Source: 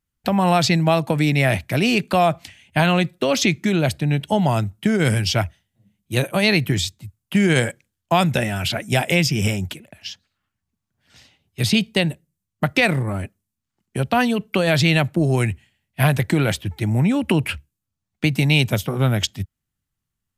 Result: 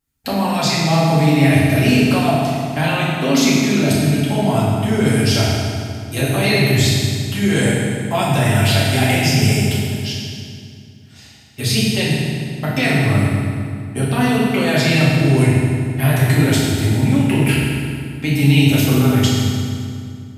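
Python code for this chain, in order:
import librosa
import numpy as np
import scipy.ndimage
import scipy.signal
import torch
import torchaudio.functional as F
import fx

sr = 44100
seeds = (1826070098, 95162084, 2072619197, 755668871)

p1 = fx.high_shelf(x, sr, hz=6200.0, db=5.0)
p2 = fx.over_compress(p1, sr, threshold_db=-23.0, ratio=-1.0)
p3 = p1 + F.gain(torch.from_numpy(p2), 0.5).numpy()
p4 = fx.rev_fdn(p3, sr, rt60_s=2.3, lf_ratio=1.35, hf_ratio=0.8, size_ms=22.0, drr_db=-8.0)
y = F.gain(torch.from_numpy(p4), -10.0).numpy()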